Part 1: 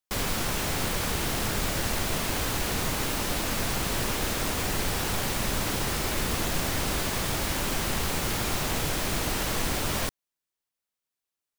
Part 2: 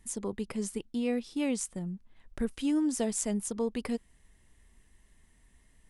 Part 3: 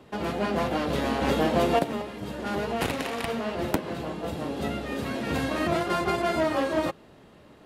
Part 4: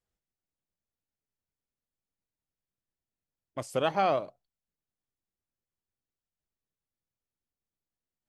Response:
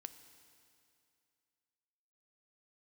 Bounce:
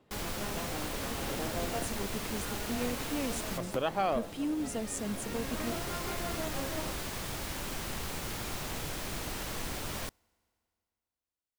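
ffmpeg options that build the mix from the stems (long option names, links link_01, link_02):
-filter_complex "[0:a]volume=-10dB,asplit=2[link_01][link_02];[link_02]volume=-16dB[link_03];[1:a]adelay=1750,volume=-5.5dB[link_04];[2:a]volume=-16dB,asplit=2[link_05][link_06];[link_06]volume=-7dB[link_07];[3:a]volume=-4dB,asplit=2[link_08][link_09];[link_09]apad=whole_len=510995[link_10];[link_01][link_10]sidechaincompress=threshold=-44dB:ratio=8:attack=11:release=1210[link_11];[4:a]atrim=start_sample=2205[link_12];[link_03][link_07]amix=inputs=2:normalize=0[link_13];[link_13][link_12]afir=irnorm=-1:irlink=0[link_14];[link_11][link_04][link_05][link_08][link_14]amix=inputs=5:normalize=0"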